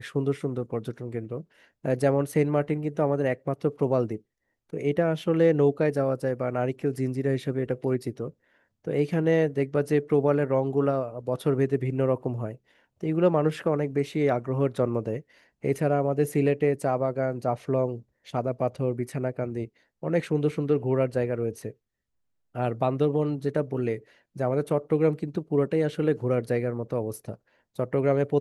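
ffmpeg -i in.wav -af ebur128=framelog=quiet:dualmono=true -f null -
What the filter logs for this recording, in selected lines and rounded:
Integrated loudness:
  I:         -23.6 LUFS
  Threshold: -34.0 LUFS
Loudness range:
  LRA:         3.3 LU
  Threshold: -44.0 LUFS
  LRA low:   -25.9 LUFS
  LRA high:  -22.6 LUFS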